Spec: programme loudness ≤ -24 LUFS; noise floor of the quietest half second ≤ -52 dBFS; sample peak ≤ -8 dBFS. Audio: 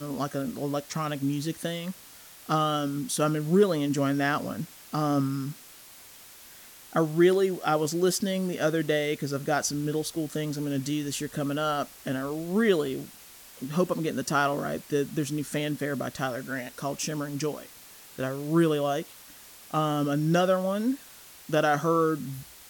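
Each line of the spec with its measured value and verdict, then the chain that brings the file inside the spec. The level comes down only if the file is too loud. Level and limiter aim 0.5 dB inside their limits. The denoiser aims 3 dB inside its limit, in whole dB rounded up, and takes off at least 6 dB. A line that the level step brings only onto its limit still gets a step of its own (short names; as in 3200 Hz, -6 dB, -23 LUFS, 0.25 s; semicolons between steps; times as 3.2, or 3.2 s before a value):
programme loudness -28.0 LUFS: OK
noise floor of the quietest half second -49 dBFS: fail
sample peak -10.0 dBFS: OK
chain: denoiser 6 dB, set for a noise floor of -49 dBFS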